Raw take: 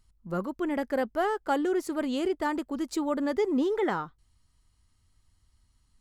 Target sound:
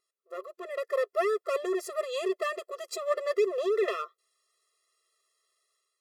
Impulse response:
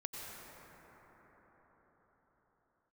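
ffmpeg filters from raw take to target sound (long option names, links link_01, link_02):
-af "aeval=exprs='clip(val(0),-1,0.0237)':channel_layout=same,dynaudnorm=framelen=520:gausssize=3:maxgain=8.5dB,afftfilt=real='re*eq(mod(floor(b*sr/1024/350),2),1)':imag='im*eq(mod(floor(b*sr/1024/350),2),1)':win_size=1024:overlap=0.75,volume=-3.5dB"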